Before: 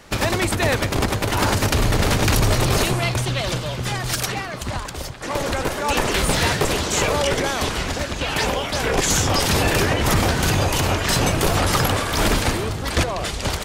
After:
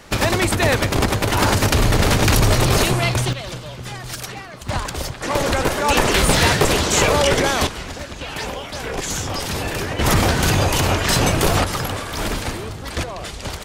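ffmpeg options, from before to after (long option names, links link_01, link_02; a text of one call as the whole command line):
ffmpeg -i in.wav -af "asetnsamples=nb_out_samples=441:pad=0,asendcmd='3.33 volume volume -6.5dB;4.69 volume volume 4dB;7.67 volume volume -6dB;9.99 volume volume 2dB;11.64 volume volume -5dB',volume=2.5dB" out.wav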